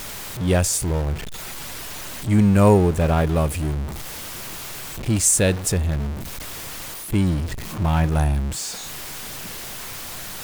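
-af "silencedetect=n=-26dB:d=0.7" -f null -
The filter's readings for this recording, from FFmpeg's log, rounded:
silence_start: 1.15
silence_end: 2.27 | silence_duration: 1.12
silence_start: 3.86
silence_end: 5.07 | silence_duration: 1.21
silence_start: 6.13
silence_end: 7.12 | silence_duration: 0.99
silence_start: 8.70
silence_end: 10.44 | silence_duration: 1.73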